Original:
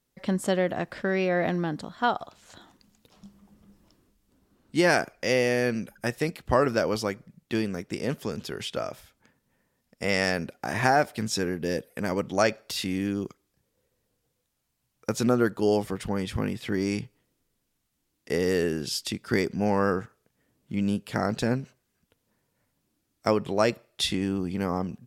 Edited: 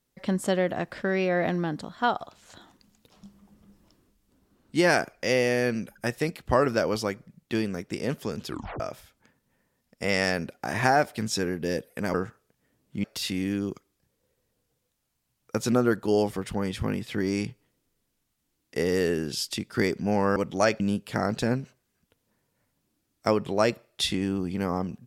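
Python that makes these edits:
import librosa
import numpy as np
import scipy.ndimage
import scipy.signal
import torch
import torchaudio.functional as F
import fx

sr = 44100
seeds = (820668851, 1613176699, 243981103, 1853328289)

y = fx.edit(x, sr, fx.tape_stop(start_s=8.48, length_s=0.32),
    fx.swap(start_s=12.14, length_s=0.44, other_s=19.9, other_length_s=0.9), tone=tone)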